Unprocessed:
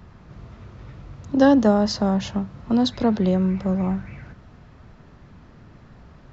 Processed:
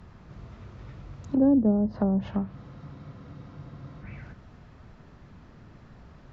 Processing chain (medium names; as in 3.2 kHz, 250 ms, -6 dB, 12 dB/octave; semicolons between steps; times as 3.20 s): low-pass that closes with the level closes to 380 Hz, closed at -15.5 dBFS; spectral freeze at 2.57 s, 1.46 s; trim -3 dB